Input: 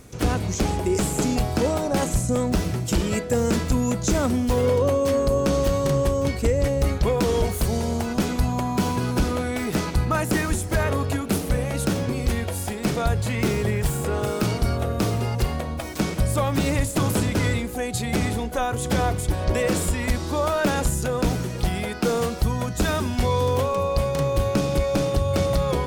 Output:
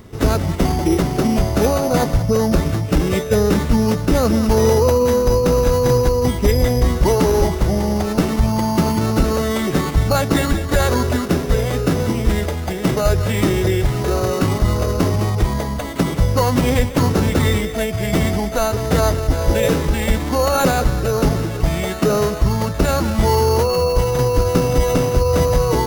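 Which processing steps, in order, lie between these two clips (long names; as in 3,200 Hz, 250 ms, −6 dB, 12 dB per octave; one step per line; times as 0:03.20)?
feedback echo with a high-pass in the loop 191 ms, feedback 78%, high-pass 810 Hz, level −11 dB
bad sample-rate conversion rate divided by 8×, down filtered, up hold
phase-vocoder pitch shift with formants kept −2 semitones
level +6.5 dB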